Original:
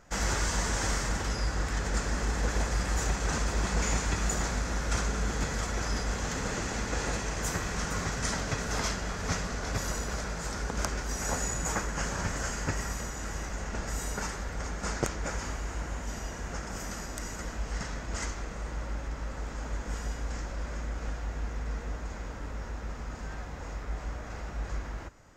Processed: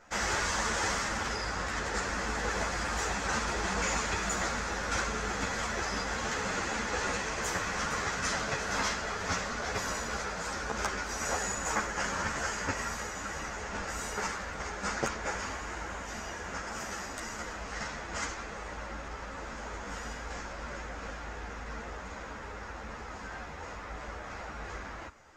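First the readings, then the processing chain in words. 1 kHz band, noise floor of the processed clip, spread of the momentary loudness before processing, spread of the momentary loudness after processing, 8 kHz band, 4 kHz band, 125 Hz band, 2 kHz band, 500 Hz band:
+3.0 dB, -43 dBFS, 9 LU, 11 LU, -1.5 dB, +1.0 dB, -8.0 dB, +3.0 dB, 0.0 dB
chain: overdrive pedal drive 11 dB, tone 3.5 kHz, clips at -11 dBFS; three-phase chorus; trim +1 dB

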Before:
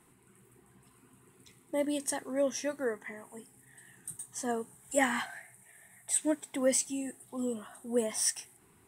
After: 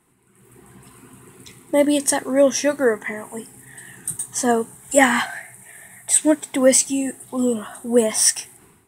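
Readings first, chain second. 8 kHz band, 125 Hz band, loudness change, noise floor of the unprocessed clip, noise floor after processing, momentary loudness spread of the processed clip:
+13.5 dB, +14.0 dB, +14.0 dB, -64 dBFS, -56 dBFS, 15 LU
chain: level rider gain up to 15.5 dB

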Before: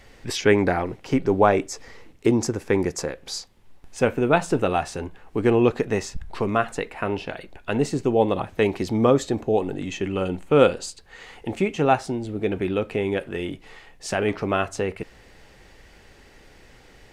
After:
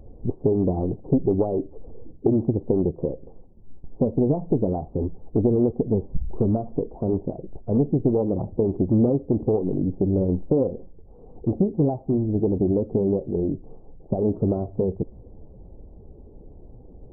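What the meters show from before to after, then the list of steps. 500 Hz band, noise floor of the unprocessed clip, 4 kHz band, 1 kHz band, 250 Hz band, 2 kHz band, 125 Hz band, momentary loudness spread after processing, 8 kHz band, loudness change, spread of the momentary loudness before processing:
-2.0 dB, -51 dBFS, under -40 dB, -12.0 dB, +2.5 dB, under -40 dB, +4.5 dB, 9 LU, under -40 dB, -0.5 dB, 15 LU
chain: coarse spectral quantiser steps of 15 dB; compression 5:1, threshold -23 dBFS, peak gain reduction 11.5 dB; Gaussian low-pass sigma 16 samples; loudspeaker Doppler distortion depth 0.33 ms; trim +9 dB

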